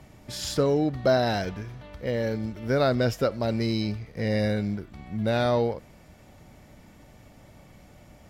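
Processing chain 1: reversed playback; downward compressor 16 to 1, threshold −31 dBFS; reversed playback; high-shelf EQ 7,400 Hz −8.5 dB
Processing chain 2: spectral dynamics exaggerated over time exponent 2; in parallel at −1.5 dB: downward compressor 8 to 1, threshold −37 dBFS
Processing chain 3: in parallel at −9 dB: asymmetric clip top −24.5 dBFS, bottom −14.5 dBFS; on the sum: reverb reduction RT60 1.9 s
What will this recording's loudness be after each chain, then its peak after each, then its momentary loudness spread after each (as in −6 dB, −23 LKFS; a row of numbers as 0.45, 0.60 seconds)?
−37.0, −28.5, −26.5 LKFS; −23.0, −12.0, −10.0 dBFS; 18, 13, 14 LU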